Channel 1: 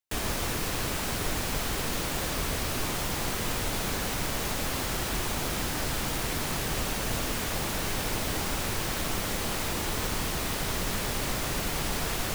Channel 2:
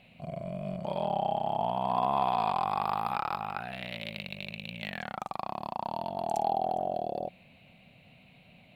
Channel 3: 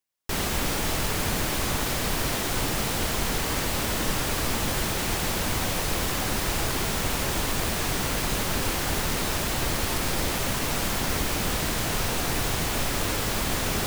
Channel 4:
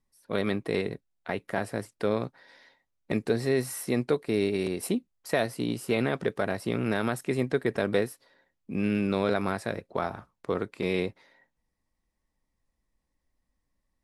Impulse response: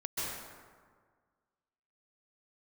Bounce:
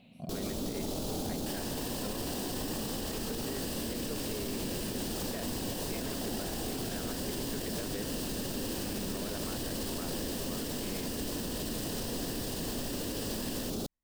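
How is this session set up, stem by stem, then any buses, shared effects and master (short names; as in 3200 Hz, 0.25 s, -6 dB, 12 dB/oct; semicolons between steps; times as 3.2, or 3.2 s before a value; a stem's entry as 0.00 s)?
-2.0 dB, 1.35 s, no bus, no send, ripple EQ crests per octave 1.3, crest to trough 11 dB; passive tone stack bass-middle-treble 5-5-5
-4.0 dB, 0.00 s, bus A, no send, compressor, threshold -36 dBFS, peak gain reduction 13 dB
-6.5 dB, 0.00 s, bus A, no send, ten-band EQ 500 Hz +6 dB, 1000 Hz -4 dB, 2000 Hz -9 dB
-13.0 dB, 0.00 s, no bus, no send, dry
bus A: 0.0 dB, ten-band EQ 250 Hz +11 dB, 2000 Hz -7 dB, 4000 Hz +5 dB; limiter -25 dBFS, peak gain reduction 8.5 dB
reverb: off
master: limiter -26.5 dBFS, peak gain reduction 7.5 dB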